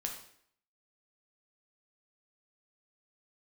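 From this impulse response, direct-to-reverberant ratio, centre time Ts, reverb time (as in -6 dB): 1.5 dB, 24 ms, 0.65 s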